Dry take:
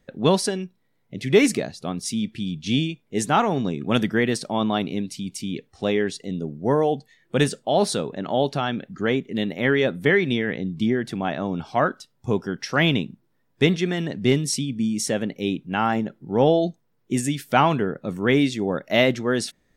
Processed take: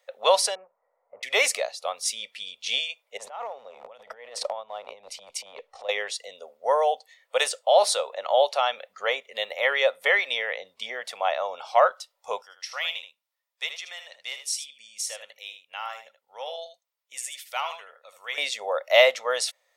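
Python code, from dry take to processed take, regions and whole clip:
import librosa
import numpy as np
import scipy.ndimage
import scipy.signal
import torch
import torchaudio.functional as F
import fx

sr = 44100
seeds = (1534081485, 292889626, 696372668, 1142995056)

y = fx.chain(x, sr, fx.law_mismatch(coded='mu'),
    fx.gaussian_blur(sigma=7.0), at=(0.55, 1.23))
y = fx.chain(y, sr, fx.tilt_eq(slope=-3.5),
    fx.over_compress(threshold_db=-28.0, ratio=-1.0),
    fx.transient(attack_db=-11, sustain_db=-6), at=(3.17, 5.89))
y = fx.chain(y, sr, fx.tone_stack(knobs='5-5-5'),
    fx.echo_single(ms=78, db=-9.5), at=(12.42, 18.38))
y = scipy.signal.sosfilt(scipy.signal.ellip(4, 1.0, 40, 530.0, 'highpass', fs=sr, output='sos'), y)
y = fx.peak_eq(y, sr, hz=1600.0, db=-11.0, octaves=0.21)
y = F.gain(torch.from_numpy(y), 4.0).numpy()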